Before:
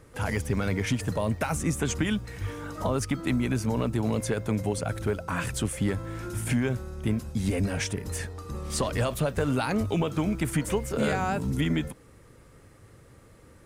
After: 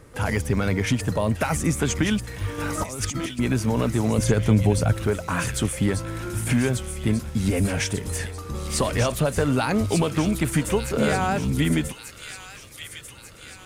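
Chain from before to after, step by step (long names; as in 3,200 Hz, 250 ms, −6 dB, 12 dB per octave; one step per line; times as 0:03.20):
0:02.58–0:03.39: compressor whose output falls as the input rises −32 dBFS, ratio −0.5
0:04.18–0:04.93: low-shelf EQ 170 Hz +10.5 dB
on a send: delay with a high-pass on its return 1,191 ms, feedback 55%, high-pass 2,500 Hz, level −4.5 dB
on the sum: level +4.5 dB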